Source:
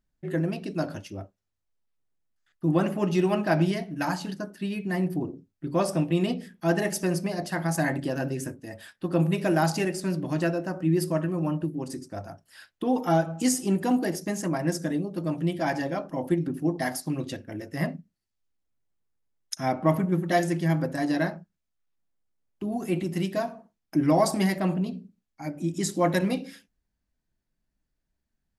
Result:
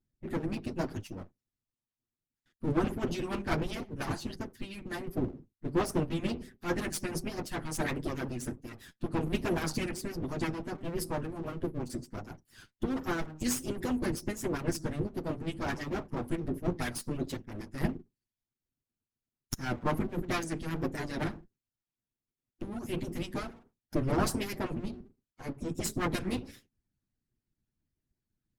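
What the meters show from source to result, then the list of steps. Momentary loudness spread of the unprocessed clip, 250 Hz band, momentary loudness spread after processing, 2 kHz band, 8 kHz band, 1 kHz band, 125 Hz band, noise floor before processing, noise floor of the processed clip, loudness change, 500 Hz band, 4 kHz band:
12 LU, -8.0 dB, 10 LU, -6.0 dB, -5.0 dB, -8.0 dB, -8.0 dB, -81 dBFS, under -85 dBFS, -7.5 dB, -8.5 dB, -4.0 dB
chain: comb filter that takes the minimum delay 8.2 ms; resonant low shelf 410 Hz +7.5 dB, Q 1.5; vibrato 1.4 Hz 86 cents; harmonic-percussive split harmonic -15 dB; trim -2.5 dB

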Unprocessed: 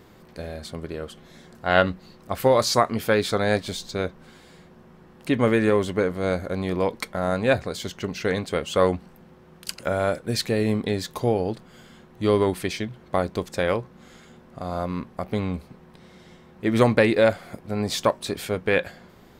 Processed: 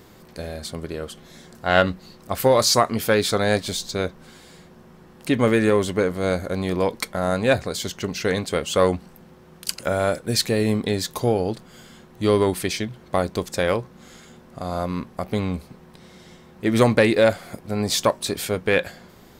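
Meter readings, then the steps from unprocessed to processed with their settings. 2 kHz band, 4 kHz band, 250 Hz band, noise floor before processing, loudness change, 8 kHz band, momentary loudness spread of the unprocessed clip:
+1.5 dB, +4.5 dB, +2.0 dB, -51 dBFS, +2.0 dB, +7.5 dB, 15 LU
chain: tone controls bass 0 dB, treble +6 dB; in parallel at -7.5 dB: saturation -12.5 dBFS, distortion -16 dB; on the sum: trim -1 dB

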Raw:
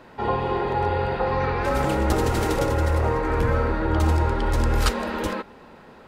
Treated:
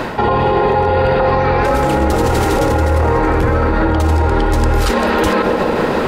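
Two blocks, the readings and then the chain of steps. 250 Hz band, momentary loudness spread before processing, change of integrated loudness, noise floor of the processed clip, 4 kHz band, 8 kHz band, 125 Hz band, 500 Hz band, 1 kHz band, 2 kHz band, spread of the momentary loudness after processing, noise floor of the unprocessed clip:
+10.0 dB, 5 LU, +9.0 dB, -17 dBFS, +8.0 dB, +7.0 dB, +7.5 dB, +10.5 dB, +10.0 dB, +9.5 dB, 1 LU, -47 dBFS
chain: reverse; compression 5:1, threshold -35 dBFS, peak gain reduction 17 dB; reverse; band-passed feedback delay 145 ms, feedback 81%, band-pass 440 Hz, level -7 dB; loudness maximiser +34.5 dB; trim -5 dB

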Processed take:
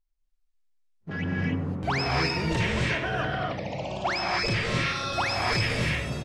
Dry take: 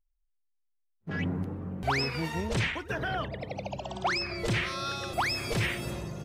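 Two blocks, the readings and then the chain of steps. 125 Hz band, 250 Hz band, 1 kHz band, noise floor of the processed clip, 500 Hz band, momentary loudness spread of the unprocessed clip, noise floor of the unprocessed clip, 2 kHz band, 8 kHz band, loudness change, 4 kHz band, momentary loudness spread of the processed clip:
+4.5 dB, +4.0 dB, +4.0 dB, -72 dBFS, +4.0 dB, 8 LU, -75 dBFS, +4.5 dB, +2.0 dB, +4.5 dB, +4.5 dB, 6 LU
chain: low-pass 7.6 kHz 12 dB/octave; delay 99 ms -17 dB; gated-style reverb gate 320 ms rising, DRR -2.5 dB

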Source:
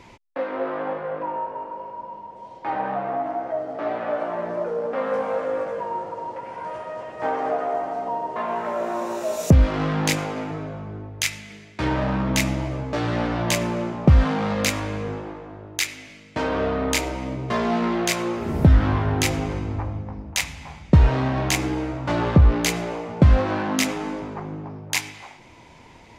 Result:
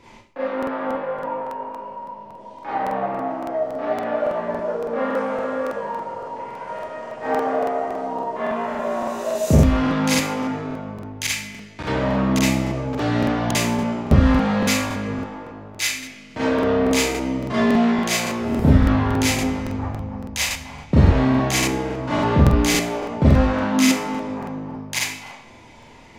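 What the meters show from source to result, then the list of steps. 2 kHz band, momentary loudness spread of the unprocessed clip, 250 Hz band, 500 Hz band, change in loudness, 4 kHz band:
+2.5 dB, 16 LU, +5.0 dB, +2.5 dB, +2.5 dB, +3.0 dB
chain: Schroeder reverb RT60 0.45 s, combs from 27 ms, DRR -7.5 dB; crackling interface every 0.28 s, samples 2048, repeat, from 0.58 s; trim -5.5 dB

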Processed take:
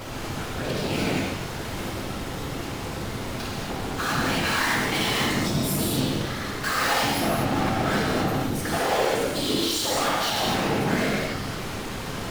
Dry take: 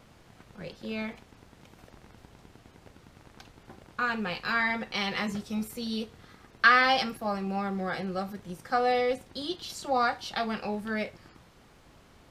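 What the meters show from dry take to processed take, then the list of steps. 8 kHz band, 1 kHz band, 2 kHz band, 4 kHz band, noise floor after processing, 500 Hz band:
+18.5 dB, +3.0 dB, +2.0 dB, +9.0 dB, -33 dBFS, +6.0 dB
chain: power-law waveshaper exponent 0.5; saturation -24 dBFS, distortion -9 dB; whisper effect; gated-style reverb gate 270 ms flat, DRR -3.5 dB; trim -3 dB

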